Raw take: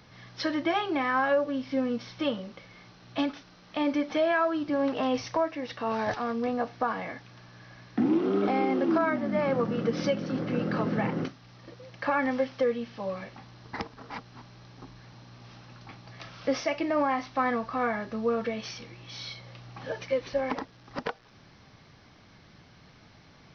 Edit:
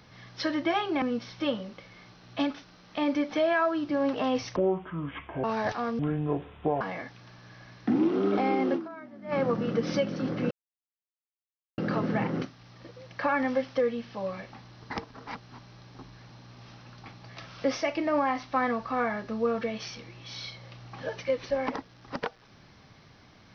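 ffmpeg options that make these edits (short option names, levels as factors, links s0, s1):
-filter_complex "[0:a]asplit=9[s0][s1][s2][s3][s4][s5][s6][s7][s8];[s0]atrim=end=1.022[s9];[s1]atrim=start=1.808:end=5.354[s10];[s2]atrim=start=5.35:end=5.86,asetpts=PTS-STARTPTS,asetrate=25578,aresample=44100[s11];[s3]atrim=start=5.856:end=6.414[s12];[s4]atrim=start=6.41:end=6.91,asetpts=PTS-STARTPTS,asetrate=26901,aresample=44100[s13];[s5]atrim=start=6.906:end=9.12,asetpts=PTS-STARTPTS,afade=t=out:st=1.954:d=0.26:c=exp:silence=0.141254[s14];[s6]atrim=start=9.12:end=9.17,asetpts=PTS-STARTPTS,volume=0.141[s15];[s7]atrim=start=9.17:end=10.61,asetpts=PTS-STARTPTS,afade=t=in:d=0.26:c=exp:silence=0.141254,afade=t=out:st=1.436:d=0.004:c=hsin,apad=pad_dur=1.27[s16];[s8]atrim=start=10.61,asetpts=PTS-STARTPTS,afade=t=in:d=0.004:c=hsin[s17];[s9][s10]acrossfade=d=0.004:c1=hsin:c2=hsin[s18];[s18][s11]acrossfade=d=0.004:c1=hsin:c2=hsin[s19];[s19][s12]acrossfade=d=0.004:c1=hsin:c2=hsin[s20];[s20][s13]acrossfade=d=0.004:c1=hsin:c2=hsin[s21];[s14][s15][s16][s17]concat=n=4:v=0:a=1[s22];[s21][s22]acrossfade=d=0.004:c1=hsin:c2=hsin"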